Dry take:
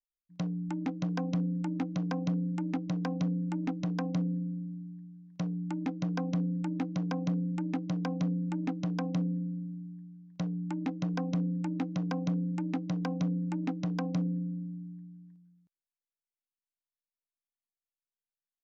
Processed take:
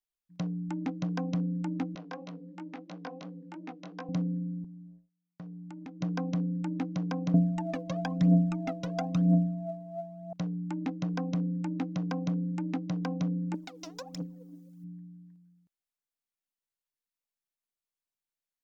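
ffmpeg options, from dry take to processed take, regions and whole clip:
ffmpeg -i in.wav -filter_complex "[0:a]asettb=1/sr,asplit=3[link_01][link_02][link_03];[link_01]atrim=end=1.954[link_04];[link_02]atrim=start=1.95:end=4.09,asetpts=PTS-STARTPTS,afade=type=in:duration=0.004:curve=qsin,afade=type=out:start_time=2.136:duration=0.004:curve=qsin,flanger=delay=16:depth=5.8:speed=2.9,highpass=380,lowpass=5200[link_05];[link_03]atrim=start=4.086[link_06];[link_04][link_05]acrossfade=duration=0.004:curve1=hsin:curve2=qsin[link_07];[link_07][link_06]acrossfade=duration=0.004:curve1=qsin:curve2=hsin,asettb=1/sr,asplit=3[link_08][link_09][link_10];[link_08]atrim=end=4.644[link_11];[link_09]atrim=start=4.64:end=6.01,asetpts=PTS-STARTPTS,afade=type=in:duration=0.004:curve=qsin,afade=type=out:start_time=1.366:duration=0.004:curve=qsin,agate=range=-34dB:threshold=-44dB:ratio=16:release=100:detection=peak,acompressor=threshold=-49dB:ratio=2:attack=3.2:release=140:knee=1:detection=peak[link_12];[link_10]atrim=start=6.006[link_13];[link_11][link_12]acrossfade=duration=0.004:curve1=hsin:curve2=qsin[link_14];[link_14][link_13]acrossfade=duration=0.004:curve1=qsin:curve2=hsin,asettb=1/sr,asplit=3[link_15][link_16][link_17];[link_15]atrim=end=7.344[link_18];[link_16]atrim=start=7.34:end=10.33,asetpts=PTS-STARTPTS,afade=type=in:duration=0.004:curve=qsin,afade=type=out:start_time=2.986:duration=0.004:curve=qsin,aeval=exprs='val(0)+0.00794*sin(2*PI*670*n/s)':channel_layout=same,aphaser=in_gain=1:out_gain=1:delay=2.1:decay=0.73:speed=1:type=triangular[link_19];[link_17]atrim=start=10.326[link_20];[link_18][link_19]acrossfade=duration=0.004:curve1=hsin:curve2=qsin[link_21];[link_21][link_20]acrossfade=duration=0.004:curve1=qsin:curve2=hsin,asettb=1/sr,asplit=3[link_22][link_23][link_24];[link_22]atrim=end=13.544[link_25];[link_23]atrim=start=13.54:end=14.84,asetpts=PTS-STARTPTS,afade=type=in:duration=0.004:curve=qsin,afade=type=out:start_time=1.296:duration=0.004:curve=qsin,bass=frequency=250:gain=-14,treble=frequency=4000:gain=14,acompressor=threshold=-42dB:ratio=5:attack=3.2:release=140:knee=1:detection=peak,aphaser=in_gain=1:out_gain=1:delay=3.2:decay=0.8:speed=1.5:type=triangular[link_26];[link_24]atrim=start=14.836[link_27];[link_25][link_26]acrossfade=duration=0.004:curve1=hsin:curve2=qsin[link_28];[link_28][link_27]acrossfade=duration=0.004:curve1=qsin:curve2=hsin" out.wav

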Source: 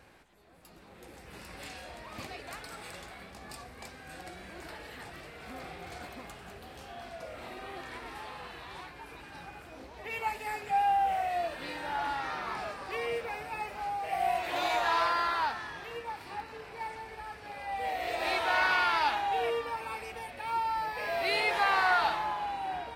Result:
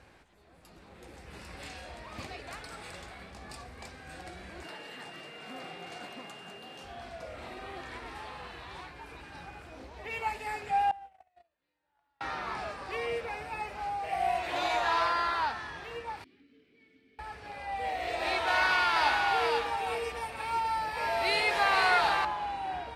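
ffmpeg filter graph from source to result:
ffmpeg -i in.wav -filter_complex "[0:a]asettb=1/sr,asplit=3[link_01][link_02][link_03];[link_01]atrim=end=4.644[link_04];[link_02]atrim=start=4.64:end=6.84,asetpts=PTS-STARTPTS,afade=type=in:duration=0.004:curve=qsin,afade=type=out:start_time=2.196:duration=0.004:curve=qsin,aeval=exprs='val(0)+0.00316*sin(2*PI*2800*n/s)':channel_layout=same,highpass=frequency=150:width=0.5412,highpass=frequency=150:width=1.3066[link_05];[link_03]atrim=start=6.836[link_06];[link_04][link_05]acrossfade=duration=0.004:curve1=hsin:curve2=qsin[link_07];[link_07][link_06]acrossfade=duration=0.004:curve1=qsin:curve2=hsin,asettb=1/sr,asplit=3[link_08][link_09][link_10];[link_08]atrim=end=10.914[link_11];[link_09]atrim=start=10.91:end=12.21,asetpts=PTS-STARTPTS,afade=type=in:duration=0.004:curve=qsin,afade=type=out:start_time=1.296:duration=0.004:curve=qsin,agate=range=-45dB:threshold=-27dB:ratio=16:release=100:detection=peak,acompressor=threshold=-45dB:ratio=8:attack=3.2:release=140:knee=1:detection=peak[link_12];[link_10]atrim=start=12.206[link_13];[link_11][link_12]acrossfade=duration=0.004:curve1=hsin:curve2=qsin[link_14];[link_14][link_13]acrossfade=duration=0.004:curve1=qsin:curve2=hsin,asettb=1/sr,asplit=3[link_15][link_16][link_17];[link_15]atrim=end=16.244[link_18];[link_16]atrim=start=16.24:end=17.19,asetpts=PTS-STARTPTS,afade=type=in:duration=0.004:curve=qsin,afade=type=out:start_time=0.946:duration=0.004:curve=qsin,asplit=3[link_19][link_20][link_21];[link_19]bandpass=frequency=270:width_type=q:width=8,volume=0dB[link_22];[link_20]bandpass=frequency=2290:width_type=q:width=8,volume=-6dB[link_23];[link_21]bandpass=frequency=3010:width_type=q:width=8,volume=-9dB[link_24];[link_22][link_23][link_24]amix=inputs=3:normalize=0,equalizer=frequency=2100:width=1.2:gain=-10[link_25];[link_17]atrim=start=17.186[link_26];[link_18][link_25]acrossfade=duration=0.004:curve1=hsin:curve2=qsin[link_27];[link_27][link_26]acrossfade=duration=0.004:curve1=qsin:curve2=hsin,asettb=1/sr,asplit=3[link_28][link_29][link_30];[link_28]atrim=end=18.474[link_31];[link_29]atrim=start=18.47:end=22.25,asetpts=PTS-STARTPTS,afade=type=in:duration=0.004:curve=qsin,afade=type=out:start_time=3.776:duration=0.004:curve=qsin,highshelf=frequency=5500:gain=7,aecho=1:1:487:0.596,atrim=end_sample=166698[link_32];[link_30]atrim=start=22.246[link_33];[link_31][link_32]acrossfade=duration=0.004:curve1=hsin:curve2=qsin[link_34];[link_34][link_33]acrossfade=duration=0.004:curve1=qsin:curve2=hsin,lowpass=9700,equalizer=frequency=70:width=1.3:gain=5" out.wav

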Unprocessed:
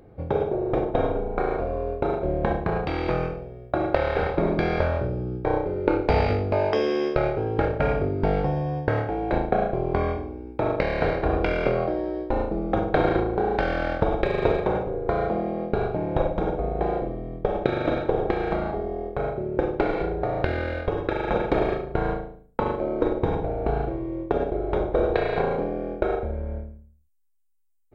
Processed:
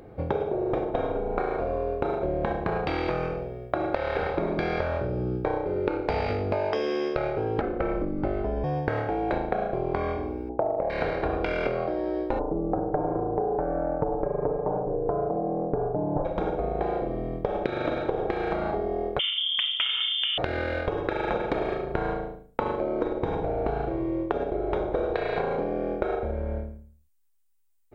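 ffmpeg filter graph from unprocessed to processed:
ffmpeg -i in.wav -filter_complex "[0:a]asettb=1/sr,asplit=3[link_01][link_02][link_03];[link_01]atrim=end=7.614[link_04];[link_02]atrim=start=7.61:end=8.64,asetpts=PTS-STARTPTS,afade=type=in:duration=0.004:curve=qsin,afade=type=out:start_time=1.026:duration=0.004:curve=qsin,lowpass=frequency=1300:poles=1,afreqshift=-88[link_05];[link_03]atrim=start=8.636[link_06];[link_04][link_05]acrossfade=duration=0.004:curve1=hsin:curve2=qsin[link_07];[link_07][link_06]acrossfade=duration=0.004:curve1=qsin:curve2=hsin,asettb=1/sr,asplit=3[link_08][link_09][link_10];[link_08]atrim=end=10.494[link_11];[link_09]atrim=start=10.49:end=10.9,asetpts=PTS-STARTPTS,afade=type=in:duration=0.004:curve=qsin,afade=type=out:start_time=0.406:duration=0.004:curve=qsin,lowpass=frequency=720:width_type=q:width=4.9,acompressor=threshold=-20dB:ratio=1.5:attack=3.2:release=140:knee=1:detection=peak[link_12];[link_10]atrim=start=10.896[link_13];[link_11][link_12]acrossfade=duration=0.004:curve1=hsin:curve2=qsin[link_14];[link_14][link_13]acrossfade=duration=0.004:curve1=qsin:curve2=hsin,asettb=1/sr,asplit=3[link_15][link_16][link_17];[link_15]atrim=end=12.394[link_18];[link_16]atrim=start=12.39:end=16.25,asetpts=PTS-STARTPTS,afade=type=in:duration=0.004:curve=qsin,afade=type=out:start_time=3.856:duration=0.004:curve=qsin,lowpass=frequency=1000:width=0.5412,lowpass=frequency=1000:width=1.3066,aecho=1:1:6.8:0.7,atrim=end_sample=170226[link_19];[link_17]atrim=start=16.246[link_20];[link_18][link_19]acrossfade=duration=0.004:curve1=hsin:curve2=qsin[link_21];[link_21][link_20]acrossfade=duration=0.004:curve1=qsin:curve2=hsin,asettb=1/sr,asplit=3[link_22][link_23][link_24];[link_22]atrim=end=19.194[link_25];[link_23]atrim=start=19.19:end=20.38,asetpts=PTS-STARTPTS,afade=type=in:duration=0.004:curve=qsin,afade=type=out:start_time=1.186:duration=0.004:curve=qsin,aeval=exprs='0.168*(abs(mod(val(0)/0.168+3,4)-2)-1)':channel_layout=same,lowpass=frequency=3100:width_type=q:width=0.5098,lowpass=frequency=3100:width_type=q:width=0.6013,lowpass=frequency=3100:width_type=q:width=0.9,lowpass=frequency=3100:width_type=q:width=2.563,afreqshift=-3600[link_26];[link_24]atrim=start=20.376[link_27];[link_25][link_26]acrossfade=duration=0.004:curve1=hsin:curve2=qsin[link_28];[link_28][link_27]acrossfade=duration=0.004:curve1=qsin:curve2=hsin,lowshelf=frequency=240:gain=-5.5,acompressor=threshold=-30dB:ratio=6,volume=6dB" out.wav

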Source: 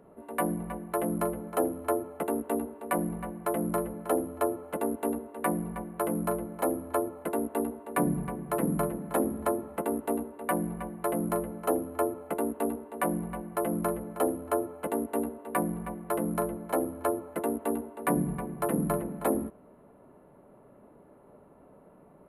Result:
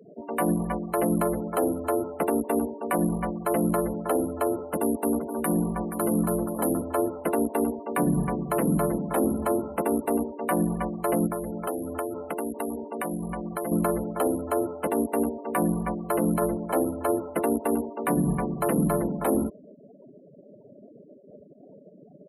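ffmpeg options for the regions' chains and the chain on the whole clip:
ffmpeg -i in.wav -filter_complex "[0:a]asettb=1/sr,asplit=3[link_01][link_02][link_03];[link_01]atrim=end=4.594[link_04];[link_02]atrim=start=4.59:end=6.82,asetpts=PTS-STARTPTS,afade=type=in:duration=0.004:curve=qsin,afade=type=out:start_time=2.226:duration=0.004:curve=qsin,equalizer=frequency=2300:width_type=o:width=0.67:gain=-5,acrossover=split=340|3000[link_05][link_06][link_07];[link_06]acompressor=threshold=-34dB:ratio=8:attack=3.2:release=140:knee=2.83:detection=peak[link_08];[link_05][link_08][link_07]amix=inputs=3:normalize=0,aecho=1:1:476:0.316,atrim=end_sample=98343[link_09];[link_03]atrim=start=6.816[link_10];[link_04][link_09]acrossfade=duration=0.004:curve1=hsin:curve2=qsin[link_11];[link_11][link_10]acrossfade=duration=0.004:curve1=qsin:curve2=hsin,asettb=1/sr,asplit=3[link_12][link_13][link_14];[link_12]atrim=end=11.274[link_15];[link_13]atrim=start=11.27:end=13.72,asetpts=PTS-STARTPTS,afade=type=in:duration=0.004:curve=qsin,afade=type=out:start_time=2.446:duration=0.004:curve=qsin,acompressor=threshold=-36dB:ratio=4:attack=3.2:release=140:knee=1:detection=peak,adynamicequalizer=threshold=0.00224:dfrequency=2500:dqfactor=0.7:tfrequency=2500:tqfactor=0.7:attack=5:release=100:ratio=0.375:range=1.5:mode=boostabove:tftype=highshelf[link_16];[link_14]atrim=start=13.716[link_17];[link_15][link_16]acrossfade=duration=0.004:curve1=hsin:curve2=qsin[link_18];[link_18][link_17]acrossfade=duration=0.004:curve1=qsin:curve2=hsin,afftfilt=real='re*gte(hypot(re,im),0.00631)':imag='im*gte(hypot(re,im),0.00631)':win_size=1024:overlap=0.75,alimiter=limit=-23dB:level=0:latency=1:release=41,volume=8dB" out.wav

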